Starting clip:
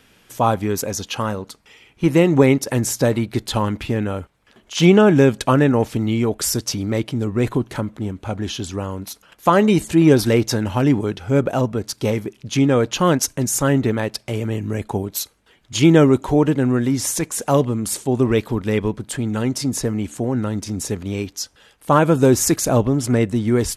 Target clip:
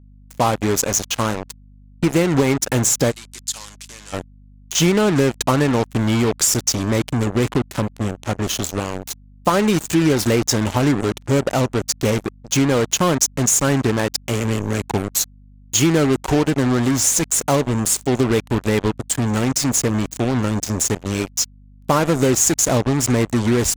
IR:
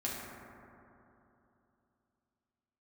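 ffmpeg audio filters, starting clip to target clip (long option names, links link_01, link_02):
-filter_complex "[0:a]equalizer=frequency=6900:width_type=o:width=0.45:gain=10,acompressor=threshold=-16dB:ratio=4,acrusher=bits=3:mix=0:aa=0.5,asplit=3[link_01][link_02][link_03];[link_01]afade=type=out:start_time=3.1:duration=0.02[link_04];[link_02]bandpass=frequency=7600:width_type=q:width=1.1:csg=0,afade=type=in:start_time=3.1:duration=0.02,afade=type=out:start_time=4.12:duration=0.02[link_05];[link_03]afade=type=in:start_time=4.12:duration=0.02[link_06];[link_04][link_05][link_06]amix=inputs=3:normalize=0,aeval=exprs='val(0)+0.00447*(sin(2*PI*50*n/s)+sin(2*PI*2*50*n/s)/2+sin(2*PI*3*50*n/s)/3+sin(2*PI*4*50*n/s)/4+sin(2*PI*5*50*n/s)/5)':channel_layout=same,volume=2.5dB"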